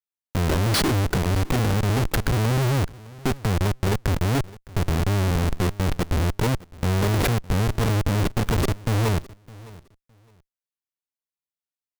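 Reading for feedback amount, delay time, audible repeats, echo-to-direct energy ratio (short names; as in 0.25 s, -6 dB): 20%, 0.611 s, 2, -21.0 dB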